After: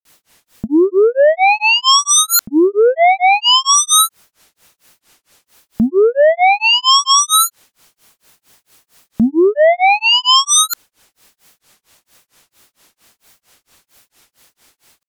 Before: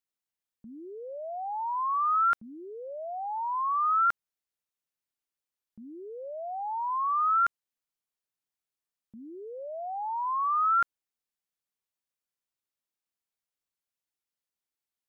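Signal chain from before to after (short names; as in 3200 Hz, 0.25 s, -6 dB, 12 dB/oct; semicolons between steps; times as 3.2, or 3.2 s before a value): sine folder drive 17 dB, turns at -19 dBFS; compressor 2:1, threshold -31 dBFS, peak gain reduction 6 dB; grains 0.23 s, grains 4.4/s, pitch spread up and down by 0 st; maximiser +27.5 dB; gain -5 dB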